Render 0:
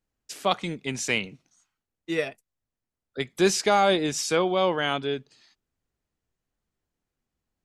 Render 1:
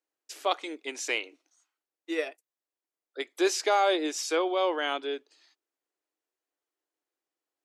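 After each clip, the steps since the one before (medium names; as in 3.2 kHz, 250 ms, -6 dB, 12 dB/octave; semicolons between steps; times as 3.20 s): elliptic high-pass 300 Hz, stop band 40 dB; dynamic bell 9.1 kHz, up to -4 dB, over -52 dBFS, Q 3.7; trim -3 dB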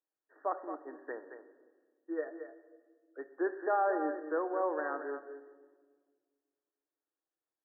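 brick-wall FIR low-pass 1.9 kHz; delay 223 ms -9.5 dB; reverberation RT60 1.6 s, pre-delay 6 ms, DRR 10.5 dB; trim -6.5 dB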